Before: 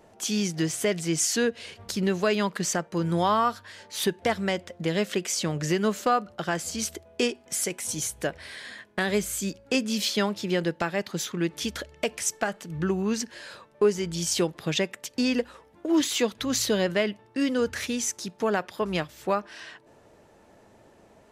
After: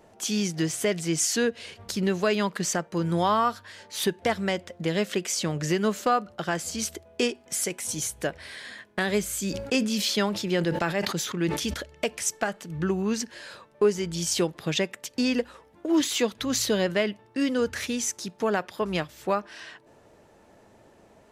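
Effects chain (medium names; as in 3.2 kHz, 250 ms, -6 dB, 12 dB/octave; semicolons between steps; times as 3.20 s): 9.38–11.74 s: decay stretcher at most 56 dB/s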